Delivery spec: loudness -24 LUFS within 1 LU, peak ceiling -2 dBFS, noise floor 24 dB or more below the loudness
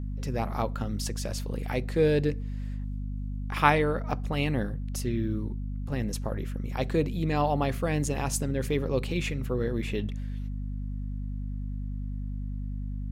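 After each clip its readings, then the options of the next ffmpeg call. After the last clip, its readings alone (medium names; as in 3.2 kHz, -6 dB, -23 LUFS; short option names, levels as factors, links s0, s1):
hum 50 Hz; highest harmonic 250 Hz; hum level -30 dBFS; loudness -30.5 LUFS; peak level -5.0 dBFS; loudness target -24.0 LUFS
-> -af "bandreject=f=50:t=h:w=4,bandreject=f=100:t=h:w=4,bandreject=f=150:t=h:w=4,bandreject=f=200:t=h:w=4,bandreject=f=250:t=h:w=4"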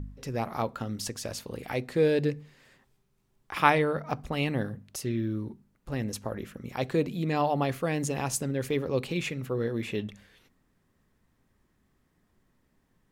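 hum not found; loudness -30.0 LUFS; peak level -5.0 dBFS; loudness target -24.0 LUFS
-> -af "volume=2,alimiter=limit=0.794:level=0:latency=1"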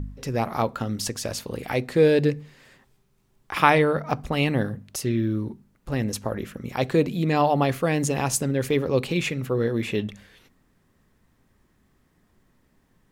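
loudness -24.5 LUFS; peak level -2.0 dBFS; noise floor -66 dBFS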